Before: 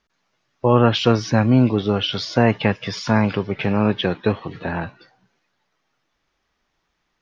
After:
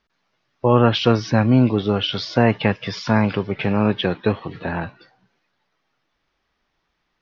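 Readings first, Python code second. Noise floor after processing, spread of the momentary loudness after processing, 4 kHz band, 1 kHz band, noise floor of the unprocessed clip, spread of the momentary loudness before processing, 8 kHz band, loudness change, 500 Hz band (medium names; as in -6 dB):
-73 dBFS, 12 LU, 0.0 dB, 0.0 dB, -73 dBFS, 12 LU, no reading, 0.0 dB, 0.0 dB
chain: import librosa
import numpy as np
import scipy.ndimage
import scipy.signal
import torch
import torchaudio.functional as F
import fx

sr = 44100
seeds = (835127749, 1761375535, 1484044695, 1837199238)

y = scipy.signal.sosfilt(scipy.signal.butter(4, 5600.0, 'lowpass', fs=sr, output='sos'), x)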